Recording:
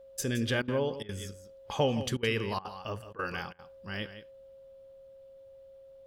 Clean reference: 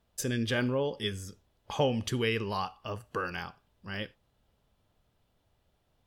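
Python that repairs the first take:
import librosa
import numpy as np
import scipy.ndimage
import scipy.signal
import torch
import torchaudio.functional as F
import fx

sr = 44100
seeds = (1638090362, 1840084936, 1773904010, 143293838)

y = fx.notch(x, sr, hz=540.0, q=30.0)
y = fx.fix_interpolate(y, sr, at_s=(0.62, 1.03, 2.17, 2.59, 3.13, 3.53), length_ms=58.0)
y = fx.fix_echo_inverse(y, sr, delay_ms=168, level_db=-12.5)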